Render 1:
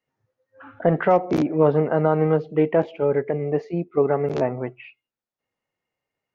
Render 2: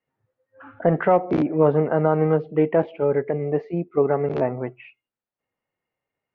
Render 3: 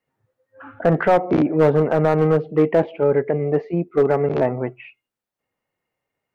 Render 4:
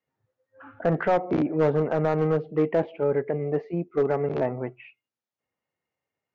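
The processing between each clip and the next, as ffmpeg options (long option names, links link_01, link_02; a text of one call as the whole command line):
ffmpeg -i in.wav -af "lowpass=2800" out.wav
ffmpeg -i in.wav -af "aeval=exprs='clip(val(0),-1,0.224)':channel_layout=same,acontrast=64,volume=-2.5dB" out.wav
ffmpeg -i in.wav -af "volume=-6.5dB" -ar 16000 -c:a libvorbis -b:a 96k out.ogg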